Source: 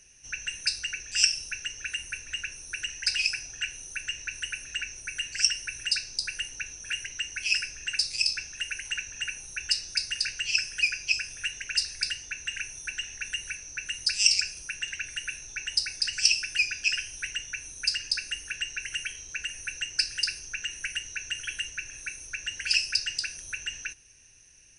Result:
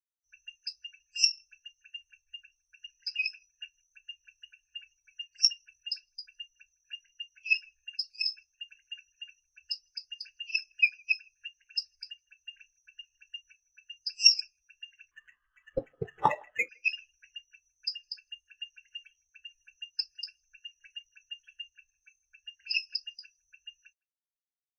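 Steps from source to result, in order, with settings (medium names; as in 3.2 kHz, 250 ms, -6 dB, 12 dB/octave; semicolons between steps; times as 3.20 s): 15.11–16.69 s: sample-rate reducer 4.6 kHz, jitter 0%; speakerphone echo 160 ms, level -13 dB; spectral contrast expander 2.5:1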